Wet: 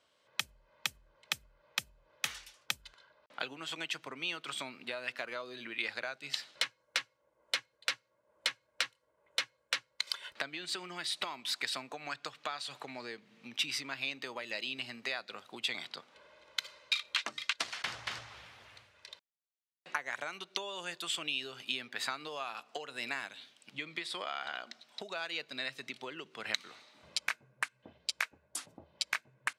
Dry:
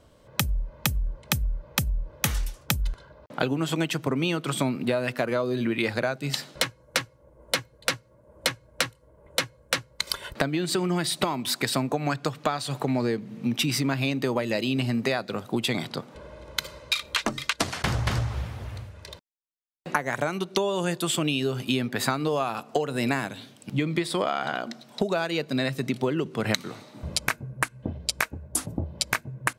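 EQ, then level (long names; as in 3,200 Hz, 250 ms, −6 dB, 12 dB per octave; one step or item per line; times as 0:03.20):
resonant band-pass 3,000 Hz, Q 0.75
−5.0 dB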